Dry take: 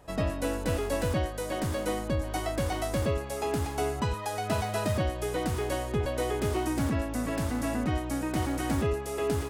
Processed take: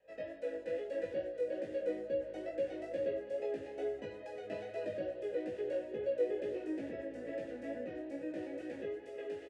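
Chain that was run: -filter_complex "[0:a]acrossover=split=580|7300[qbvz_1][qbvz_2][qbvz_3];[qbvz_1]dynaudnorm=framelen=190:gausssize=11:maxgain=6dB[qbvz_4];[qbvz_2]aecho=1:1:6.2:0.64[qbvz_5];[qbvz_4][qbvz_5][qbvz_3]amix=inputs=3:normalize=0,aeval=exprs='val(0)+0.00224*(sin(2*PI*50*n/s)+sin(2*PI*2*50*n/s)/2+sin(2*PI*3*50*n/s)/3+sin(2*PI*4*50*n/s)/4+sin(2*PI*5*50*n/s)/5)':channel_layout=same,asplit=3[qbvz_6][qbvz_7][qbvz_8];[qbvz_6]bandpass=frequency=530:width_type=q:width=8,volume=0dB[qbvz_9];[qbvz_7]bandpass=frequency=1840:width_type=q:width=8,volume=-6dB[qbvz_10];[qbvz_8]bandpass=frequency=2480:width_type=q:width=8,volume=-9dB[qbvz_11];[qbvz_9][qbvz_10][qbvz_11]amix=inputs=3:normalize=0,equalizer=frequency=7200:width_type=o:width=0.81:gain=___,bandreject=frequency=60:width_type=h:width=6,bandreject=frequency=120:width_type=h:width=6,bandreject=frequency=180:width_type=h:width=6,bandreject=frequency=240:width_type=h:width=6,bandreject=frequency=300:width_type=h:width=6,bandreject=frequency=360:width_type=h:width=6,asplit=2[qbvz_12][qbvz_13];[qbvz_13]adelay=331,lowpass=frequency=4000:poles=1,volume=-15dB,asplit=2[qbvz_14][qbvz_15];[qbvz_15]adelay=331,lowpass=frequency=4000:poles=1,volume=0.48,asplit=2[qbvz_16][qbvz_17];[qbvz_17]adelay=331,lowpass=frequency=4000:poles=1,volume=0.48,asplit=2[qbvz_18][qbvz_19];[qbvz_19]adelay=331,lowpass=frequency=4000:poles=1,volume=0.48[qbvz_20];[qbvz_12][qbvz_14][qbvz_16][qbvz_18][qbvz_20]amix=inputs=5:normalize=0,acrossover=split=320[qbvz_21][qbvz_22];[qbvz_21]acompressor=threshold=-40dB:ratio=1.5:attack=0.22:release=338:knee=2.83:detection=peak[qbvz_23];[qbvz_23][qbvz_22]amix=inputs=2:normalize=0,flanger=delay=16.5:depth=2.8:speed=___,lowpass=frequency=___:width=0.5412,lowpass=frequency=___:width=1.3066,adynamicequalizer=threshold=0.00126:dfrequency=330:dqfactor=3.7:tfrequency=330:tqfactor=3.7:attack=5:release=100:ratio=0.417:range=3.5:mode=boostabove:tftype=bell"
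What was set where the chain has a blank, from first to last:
2.5, 2.3, 11000, 11000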